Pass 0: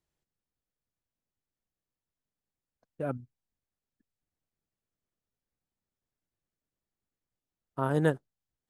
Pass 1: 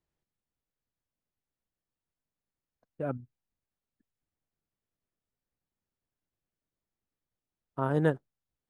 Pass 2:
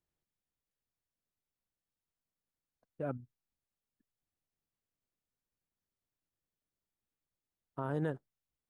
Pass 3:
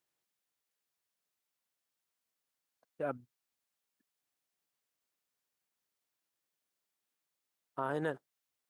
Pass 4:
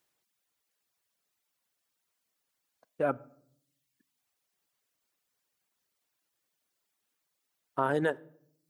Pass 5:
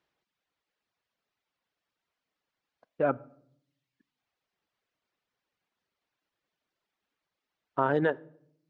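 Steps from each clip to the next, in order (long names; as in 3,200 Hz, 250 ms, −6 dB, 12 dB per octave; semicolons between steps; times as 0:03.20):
high-shelf EQ 4,600 Hz −11.5 dB
brickwall limiter −20.5 dBFS, peak gain reduction 7.5 dB; level −4 dB
high-pass filter 700 Hz 6 dB per octave; level +6.5 dB
reverb reduction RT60 0.94 s; on a send at −21 dB: convolution reverb RT60 0.70 s, pre-delay 10 ms; on the sum: level +8 dB
high-frequency loss of the air 200 metres; level +3 dB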